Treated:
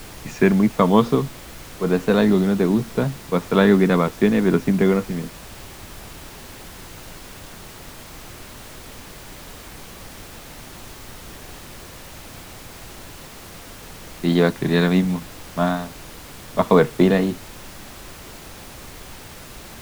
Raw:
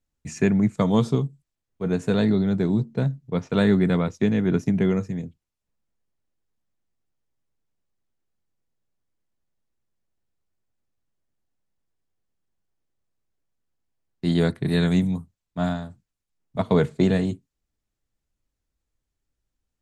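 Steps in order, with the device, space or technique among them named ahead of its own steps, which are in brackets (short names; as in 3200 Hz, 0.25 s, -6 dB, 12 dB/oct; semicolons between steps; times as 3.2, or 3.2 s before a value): horn gramophone (BPF 210–3800 Hz; bell 1100 Hz +6 dB 0.39 oct; wow and flutter; pink noise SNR 16 dB); gain +6.5 dB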